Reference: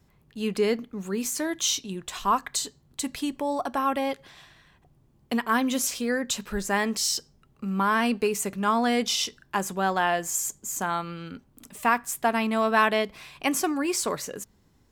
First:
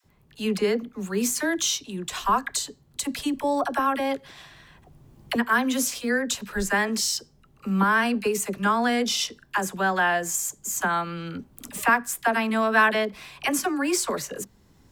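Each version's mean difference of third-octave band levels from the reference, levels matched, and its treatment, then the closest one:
3.0 dB: camcorder AGC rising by 8.7 dB per second
all-pass dispersion lows, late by 45 ms, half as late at 590 Hz
dynamic equaliser 1,600 Hz, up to +7 dB, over −43 dBFS, Q 3.9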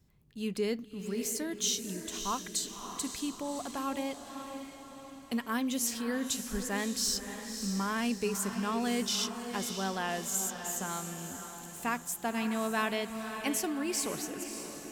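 8.0 dB: parametric band 1,000 Hz −8 dB 2.7 octaves
feedback delay with all-pass diffusion 581 ms, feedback 51%, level −8 dB
level −4 dB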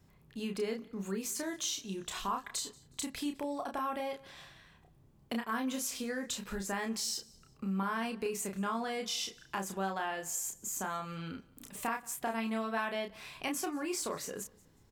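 4.5 dB: downward compressor 2.5 to 1, threshold −35 dBFS, peak gain reduction 12.5 dB
double-tracking delay 31 ms −4.5 dB
on a send: repeating echo 182 ms, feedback 35%, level −24 dB
on the sum: level −3 dB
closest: first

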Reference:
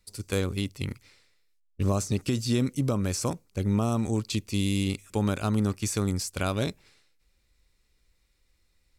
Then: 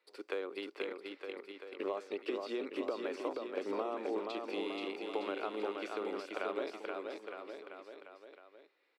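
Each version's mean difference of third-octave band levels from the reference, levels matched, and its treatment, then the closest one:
14.0 dB: Butterworth high-pass 350 Hz 36 dB per octave
downward compressor, threshold −37 dBFS, peak gain reduction 12 dB
high-frequency loss of the air 420 metres
on a send: bouncing-ball delay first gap 480 ms, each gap 0.9×, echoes 5
on the sum: level +4 dB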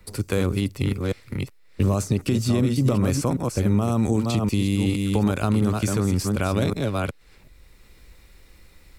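5.5 dB: delay that plays each chunk backwards 374 ms, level −7 dB
brickwall limiter −20 dBFS, peak gain reduction 7.5 dB
parametric band 5,800 Hz −7 dB 2 octaves
multiband upward and downward compressor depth 40%
level +8.5 dB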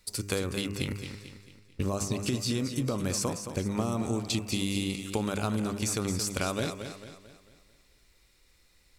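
7.0 dB: low-shelf EQ 170 Hz −6.5 dB
hum removal 100.5 Hz, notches 28
downward compressor 4 to 1, threshold −37 dBFS, peak gain reduction 12 dB
feedback echo with a swinging delay time 222 ms, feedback 44%, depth 59 cents, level −9 dB
level +8.5 dB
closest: second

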